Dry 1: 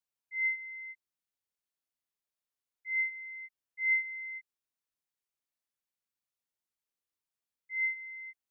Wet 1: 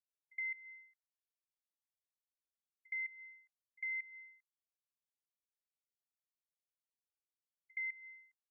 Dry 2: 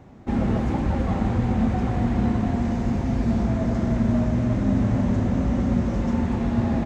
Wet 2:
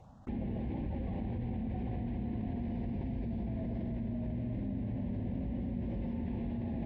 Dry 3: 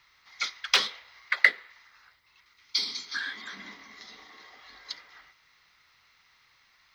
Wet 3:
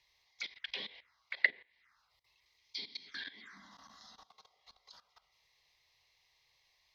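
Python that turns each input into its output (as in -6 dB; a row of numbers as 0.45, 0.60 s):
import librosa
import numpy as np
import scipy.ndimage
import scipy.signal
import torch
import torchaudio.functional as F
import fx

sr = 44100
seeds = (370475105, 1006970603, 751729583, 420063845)

y = fx.level_steps(x, sr, step_db=17)
y = fx.env_phaser(y, sr, low_hz=220.0, high_hz=1300.0, full_db=-37.5)
y = fx.env_lowpass_down(y, sr, base_hz=2800.0, full_db=-33.5)
y = F.gain(torch.from_numpy(y), -1.5).numpy()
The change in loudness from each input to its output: -9.0, -14.5, -11.0 LU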